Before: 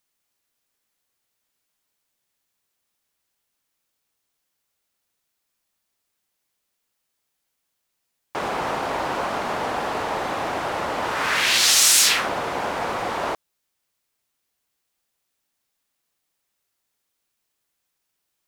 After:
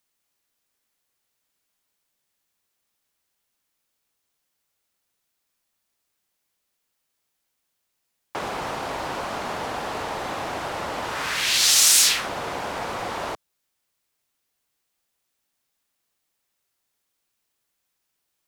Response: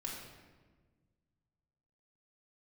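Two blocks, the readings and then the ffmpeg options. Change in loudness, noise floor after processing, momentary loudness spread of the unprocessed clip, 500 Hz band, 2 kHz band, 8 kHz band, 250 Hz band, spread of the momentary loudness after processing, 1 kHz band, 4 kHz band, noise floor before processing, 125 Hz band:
−1.5 dB, −77 dBFS, 14 LU, −4.0 dB, −4.0 dB, 0.0 dB, −3.5 dB, 17 LU, −4.5 dB, −1.0 dB, −77 dBFS, −1.5 dB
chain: -filter_complex "[0:a]acrossover=split=150|3000[link_01][link_02][link_03];[link_02]acompressor=threshold=-27dB:ratio=6[link_04];[link_01][link_04][link_03]amix=inputs=3:normalize=0"

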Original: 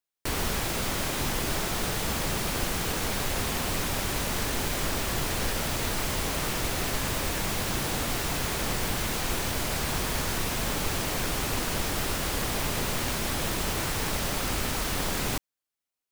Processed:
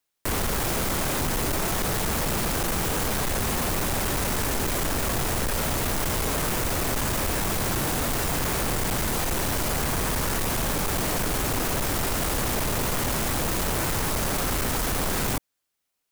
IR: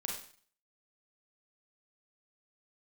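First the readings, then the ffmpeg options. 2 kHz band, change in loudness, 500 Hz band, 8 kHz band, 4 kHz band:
+1.5 dB, +3.0 dB, +4.0 dB, +3.0 dB, 0.0 dB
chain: -filter_complex "[0:a]acrossover=split=430|1800|6700[link_01][link_02][link_03][link_04];[link_03]alimiter=level_in=11.5dB:limit=-24dB:level=0:latency=1,volume=-11.5dB[link_05];[link_01][link_02][link_05][link_04]amix=inputs=4:normalize=0,volume=32.5dB,asoftclip=hard,volume=-32.5dB,volume=9dB"

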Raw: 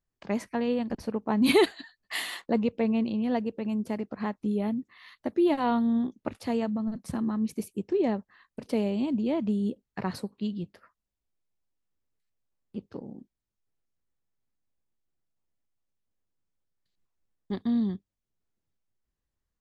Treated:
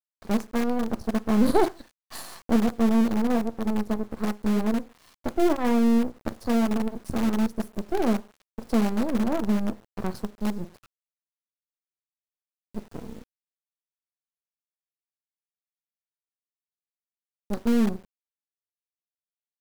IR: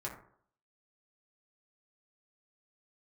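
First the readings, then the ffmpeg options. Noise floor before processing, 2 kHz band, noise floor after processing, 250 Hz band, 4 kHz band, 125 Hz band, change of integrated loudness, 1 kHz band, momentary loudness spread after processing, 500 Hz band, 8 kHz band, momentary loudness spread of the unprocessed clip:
below −85 dBFS, −0.5 dB, below −85 dBFS, +3.5 dB, −3.0 dB, +3.5 dB, +3.0 dB, +3.5 dB, 18 LU, +1.0 dB, can't be measured, 15 LU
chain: -filter_complex "[0:a]asuperstop=centerf=2600:order=8:qfactor=1,lowshelf=frequency=66:gain=12,aeval=exprs='max(val(0),0)':channel_layout=same,asplit=2[link_01][link_02];[1:a]atrim=start_sample=2205,asetrate=79380,aresample=44100[link_03];[link_02][link_03]afir=irnorm=-1:irlink=0,volume=-2dB[link_04];[link_01][link_04]amix=inputs=2:normalize=0,acrusher=bits=6:dc=4:mix=0:aa=0.000001,adynamicequalizer=threshold=0.00501:dfrequency=1800:dqfactor=0.7:tfrequency=1800:tqfactor=0.7:attack=5:release=100:ratio=0.375:range=3:mode=cutabove:tftype=highshelf,volume=2.5dB"

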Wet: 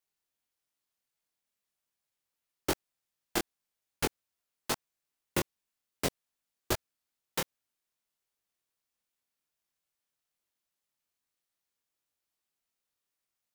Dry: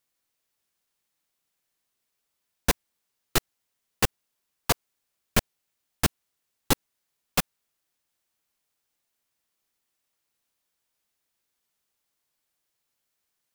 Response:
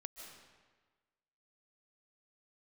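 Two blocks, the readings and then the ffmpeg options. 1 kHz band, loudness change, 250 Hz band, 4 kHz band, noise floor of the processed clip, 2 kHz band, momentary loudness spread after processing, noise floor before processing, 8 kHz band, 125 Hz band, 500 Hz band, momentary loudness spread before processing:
−7.0 dB, −7.5 dB, −5.5 dB, −7.5 dB, below −85 dBFS, −7.5 dB, 5 LU, −80 dBFS, −7.5 dB, −10.0 dB, −4.0 dB, 2 LU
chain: -af "aeval=exprs='val(0)*sin(2*PI*350*n/s)':channel_layout=same,flanger=delay=19.5:depth=6.3:speed=2.5,volume=-1.5dB"

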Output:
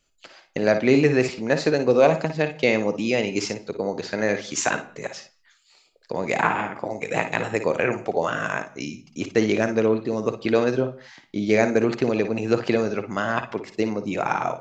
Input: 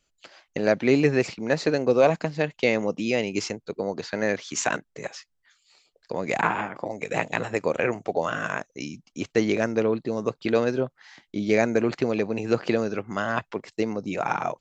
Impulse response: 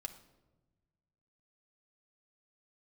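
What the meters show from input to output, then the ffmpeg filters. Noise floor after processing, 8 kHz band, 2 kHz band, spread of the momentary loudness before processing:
−62 dBFS, +2.5 dB, +2.5 dB, 11 LU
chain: -filter_complex "[0:a]asplit=2[link_01][link_02];[1:a]atrim=start_sample=2205,afade=type=out:start_time=0.23:duration=0.01,atrim=end_sample=10584,adelay=55[link_03];[link_02][link_03]afir=irnorm=-1:irlink=0,volume=-6dB[link_04];[link_01][link_04]amix=inputs=2:normalize=0,volume=2dB"

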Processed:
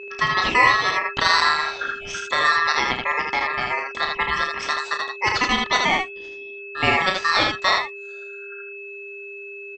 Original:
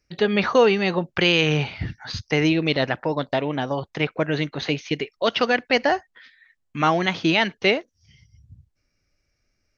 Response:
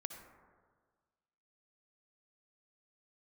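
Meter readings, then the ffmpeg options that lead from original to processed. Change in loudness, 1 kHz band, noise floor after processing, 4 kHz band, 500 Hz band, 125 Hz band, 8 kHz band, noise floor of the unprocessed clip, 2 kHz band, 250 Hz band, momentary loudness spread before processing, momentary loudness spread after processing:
+1.5 dB, +6.0 dB, −37 dBFS, +2.5 dB, −8.0 dB, −10.5 dB, can't be measured, −73 dBFS, +5.5 dB, −10.0 dB, 9 LU, 18 LU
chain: -af "aeval=exprs='val(0)+0.0224*sin(2*PI*1100*n/s)':channel_layout=same,aeval=exprs='val(0)*sin(2*PI*1500*n/s)':channel_layout=same,aecho=1:1:32|79:0.447|0.668,volume=1.5dB"

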